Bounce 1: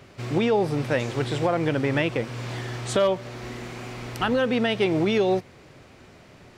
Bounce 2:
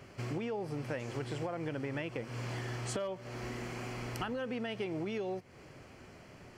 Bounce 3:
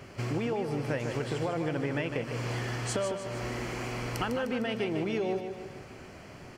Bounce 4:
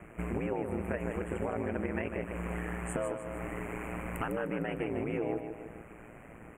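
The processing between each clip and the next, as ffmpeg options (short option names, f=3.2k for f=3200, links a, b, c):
-af "bandreject=f=3.7k:w=5.3,acompressor=threshold=-31dB:ratio=6,volume=-4dB"
-af "aecho=1:1:152|304|456|608|760|912:0.422|0.215|0.11|0.0559|0.0285|0.0145,volume=5.5dB"
-af "aeval=exprs='val(0)*sin(2*PI*57*n/s)':c=same,asuperstop=centerf=4600:order=8:qfactor=0.87"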